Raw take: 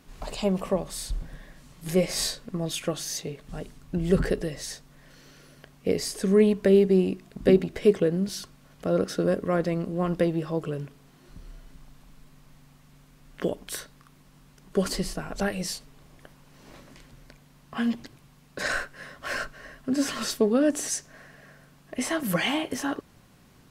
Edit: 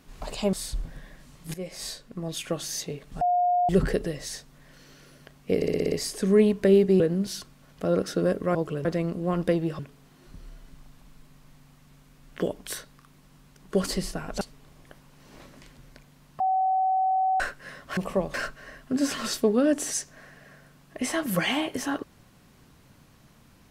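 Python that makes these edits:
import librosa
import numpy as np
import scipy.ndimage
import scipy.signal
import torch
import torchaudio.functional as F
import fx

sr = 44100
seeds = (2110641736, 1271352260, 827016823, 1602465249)

y = fx.edit(x, sr, fx.move(start_s=0.53, length_s=0.37, to_s=19.31),
    fx.fade_in_from(start_s=1.91, length_s=1.15, floor_db=-16.0),
    fx.bleep(start_s=3.58, length_s=0.48, hz=713.0, db=-19.5),
    fx.stutter(start_s=5.93, slice_s=0.06, count=7),
    fx.cut(start_s=7.01, length_s=1.01),
    fx.move(start_s=10.51, length_s=0.3, to_s=9.57),
    fx.cut(start_s=15.43, length_s=0.32),
    fx.bleep(start_s=17.74, length_s=1.0, hz=757.0, db=-20.5), tone=tone)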